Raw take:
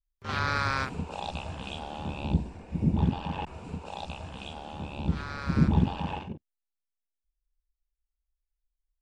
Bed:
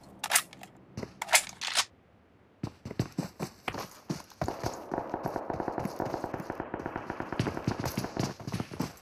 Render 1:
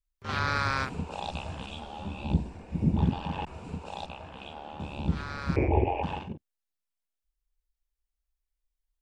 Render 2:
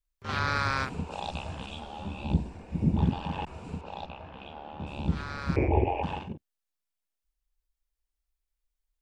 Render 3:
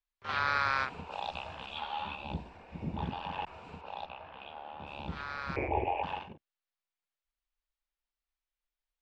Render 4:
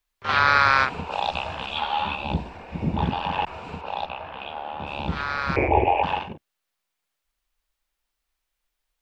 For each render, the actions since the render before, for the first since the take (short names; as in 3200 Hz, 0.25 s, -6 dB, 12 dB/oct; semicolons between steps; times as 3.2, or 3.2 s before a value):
1.66–2.29 ensemble effect; 4.06–4.8 tone controls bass -7 dB, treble -12 dB; 5.56–6.03 EQ curve 120 Hz 0 dB, 170 Hz -24 dB, 370 Hz +11 dB, 780 Hz +10 dB, 1400 Hz -20 dB, 2300 Hz +13 dB, 3900 Hz -27 dB, 5700 Hz -14 dB, 9400 Hz -27 dB
3.81–4.87 air absorption 170 m
1.76–2.15 spectral gain 800–4600 Hz +8 dB; three-band isolator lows -13 dB, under 540 Hz, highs -19 dB, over 4700 Hz
gain +12 dB